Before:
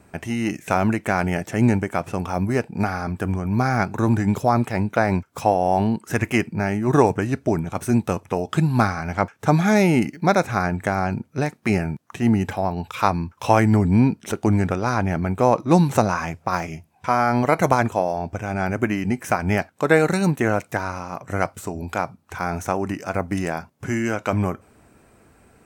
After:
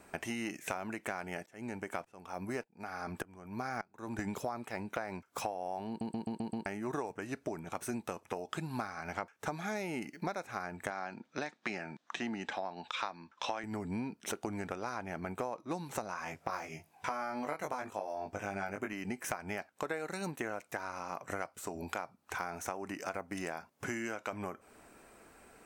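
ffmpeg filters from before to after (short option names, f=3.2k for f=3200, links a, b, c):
-filter_complex "[0:a]asettb=1/sr,asplit=3[a][b][c];[a]atrim=end=1.464[d];[b]atrim=start=1.46:end=4.19,asetpts=PTS-STARTPTS,afade=t=in:d=0.004:c=qsin,afade=t=out:st=2.726:d=0.004:c=qsin,aeval=exprs='val(0)*pow(10,-25*if(lt(mod(-1.7*n/s,1),2*abs(-1.7)/1000),1-mod(-1.7*n/s,1)/(2*abs(-1.7)/1000),(mod(-1.7*n/s,1)-2*abs(-1.7)/1000)/(1-2*abs(-1.7)/1000))/20)':c=same[e];[c]atrim=start=4.186[f];[d][e]acrossfade=d=0.004:c1=hsin:c2=qsin[g];[g][f]acrossfade=d=0.004:c1=qsin:c2=hsin,asettb=1/sr,asplit=3[h][i][j];[h]atrim=end=10.904[k];[i]atrim=start=10.9:end=13.64,asetpts=PTS-STARTPTS,afade=t=in:d=0.004:c=qsin,afade=t=out:st=2.736:d=0.004:c=qsin,highpass=200,equalizer=f=420:t=q:w=4:g=-5,equalizer=f=1.7k:t=q:w=4:g=3,equalizer=f=3.6k:t=q:w=4:g=8,lowpass=f=6.8k:w=0.5412,lowpass=f=6.8k:w=1.3066[l];[j]atrim=start=13.636[m];[k][l]acrossfade=d=0.004:c1=hsin:c2=qsin[n];[n][m]acrossfade=d=0.004:c1=qsin:c2=hsin,asettb=1/sr,asplit=3[o][p][q];[o]atrim=end=16.244[r];[p]atrim=start=16.24:end=18.93,asetpts=PTS-STARTPTS,afade=t=in:d=0.004:c=qsin,afade=t=out:st=2.686:d=0.004:c=qsin,asplit=2[s][t];[t]adelay=20,volume=-3dB[u];[s][u]amix=inputs=2:normalize=0,atrim=end_sample=118629[v];[q]atrim=start=18.926[w];[r][v]acrossfade=d=0.004:c1=hsin:c2=qsin[x];[x][w]acrossfade=d=0.004:c1=qsin:c2=hsin,asplit=7[y][z][aa][ab][ac][ad][ae];[y]atrim=end=6.012[af];[z]atrim=start=5.878:end=6.012[ag];[aa]atrim=start=5.878:end=6.012[ah];[ab]atrim=start=5.878:end=6.012[ai];[ac]atrim=start=5.878:end=6.012[aj];[ad]atrim=start=5.878:end=6.012[ak];[ae]atrim=start=6.658[al];[af][ag]acrossfade=d=0.004:c1=hsin:c2=hsin[am];[am][ah]acrossfade=d=0.004:c1=hsin:c2=hsin[an];[an][ai]acrossfade=d=0.004:c1=hsin:c2=hsin[ao];[ao][aj]acrossfade=d=0.004:c1=hsin:c2=hsin[ap];[ap][ak]acrossfade=d=0.004:c1=hsin:c2=hsin[aq];[aq][al]acrossfade=d=0.004:c1=hsin:c2=hsin,equalizer=f=97:w=0.55:g=-14.5,acompressor=threshold=-34dB:ratio=8,volume=-1dB"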